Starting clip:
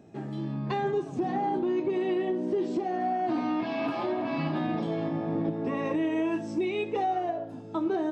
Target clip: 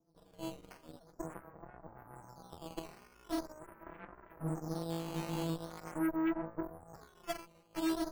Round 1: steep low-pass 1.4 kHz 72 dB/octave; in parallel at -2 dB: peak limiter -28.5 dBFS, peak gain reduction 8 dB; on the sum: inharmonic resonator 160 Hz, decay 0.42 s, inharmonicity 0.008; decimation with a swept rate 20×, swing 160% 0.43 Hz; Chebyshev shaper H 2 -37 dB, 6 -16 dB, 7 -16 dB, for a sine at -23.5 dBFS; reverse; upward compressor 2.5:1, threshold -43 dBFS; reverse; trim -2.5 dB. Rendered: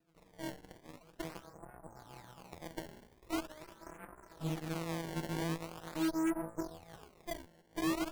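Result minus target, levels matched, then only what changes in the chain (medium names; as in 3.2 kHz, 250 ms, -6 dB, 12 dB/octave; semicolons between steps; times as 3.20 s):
decimation with a swept rate: distortion +10 dB
change: decimation with a swept rate 7×, swing 160% 0.43 Hz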